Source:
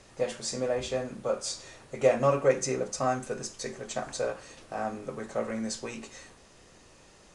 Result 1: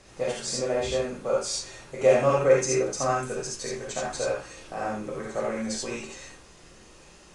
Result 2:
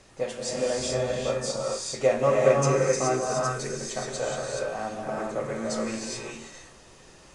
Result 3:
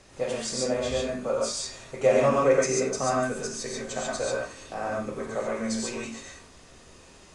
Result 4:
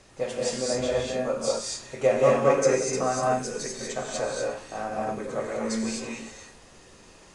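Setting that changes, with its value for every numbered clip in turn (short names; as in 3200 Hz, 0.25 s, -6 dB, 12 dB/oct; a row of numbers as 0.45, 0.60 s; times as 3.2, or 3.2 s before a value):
non-linear reverb, gate: 0.1, 0.45, 0.16, 0.27 s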